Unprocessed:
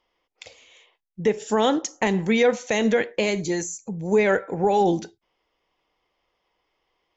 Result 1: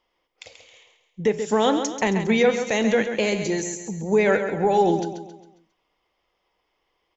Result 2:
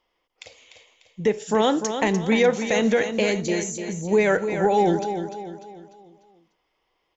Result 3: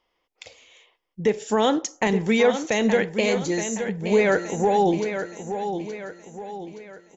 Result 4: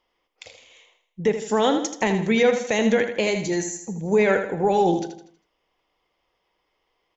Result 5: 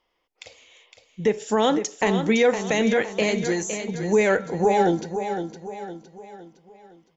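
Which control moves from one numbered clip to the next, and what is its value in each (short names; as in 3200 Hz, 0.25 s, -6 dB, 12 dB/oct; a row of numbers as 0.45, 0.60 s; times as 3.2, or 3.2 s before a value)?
feedback echo, time: 135, 297, 871, 80, 511 ms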